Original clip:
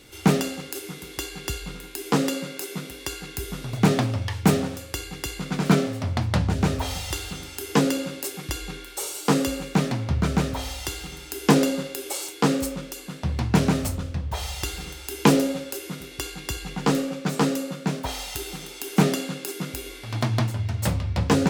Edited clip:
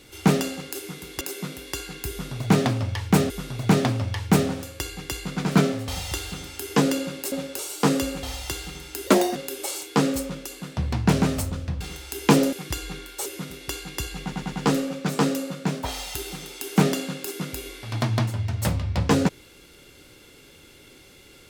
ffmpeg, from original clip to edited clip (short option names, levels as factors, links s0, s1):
-filter_complex "[0:a]asplit=15[s0][s1][s2][s3][s4][s5][s6][s7][s8][s9][s10][s11][s12][s13][s14];[s0]atrim=end=1.212[s15];[s1]atrim=start=2.538:end=4.632[s16];[s2]atrim=start=3.438:end=6.022[s17];[s3]atrim=start=6.868:end=8.312[s18];[s4]atrim=start=15.488:end=15.762[s19];[s5]atrim=start=9.038:end=9.682[s20];[s6]atrim=start=10.598:end=11.444[s21];[s7]atrim=start=11.44:end=11.82,asetpts=PTS-STARTPTS,asetrate=58653,aresample=44100[s22];[s8]atrim=start=11.816:end=14.272[s23];[s9]atrim=start=14.768:end=15.492[s24];[s10]atrim=start=8.308:end=9.042[s25];[s11]atrim=start=15.758:end=16.832[s26];[s12]atrim=start=16.728:end=16.832[s27];[s13]atrim=start=16.728:end=16.832[s28];[s14]atrim=start=16.728[s29];[s15][s16]acrossfade=d=0.004:c1=hsin:c2=hsin[s30];[s30][s17]acrossfade=d=0.004:c1=hsin:c2=hsin[s31];[s31][s18]acrossfade=d=0.004:c1=hsin:c2=hsin[s32];[s32][s19]acrossfade=d=0.004:c1=hsin:c2=hsin[s33];[s33][s20]acrossfade=d=0.004:c1=hsin:c2=hsin[s34];[s34][s21]acrossfade=d=0.004:c1=hsin:c2=hsin[s35];[s35][s22]acrossfade=d=0.004:c1=hsin:c2=hsin[s36];[s36][s23]acrossfade=d=0.004:c1=hsin:c2=hsin[s37];[s37][s24]acrossfade=d=0.004:c1=hsin:c2=hsin[s38];[s38][s25]acrossfade=d=0.004:c1=hsin:c2=hsin[s39];[s39][s26]acrossfade=d=0.004:c1=hsin:c2=hsin[s40];[s40][s27]acrossfade=d=0.004:c1=hsin:c2=hsin[s41];[s41][s28]acrossfade=d=0.004:c1=hsin:c2=hsin[s42];[s42][s29]acrossfade=d=0.004:c1=hsin:c2=hsin"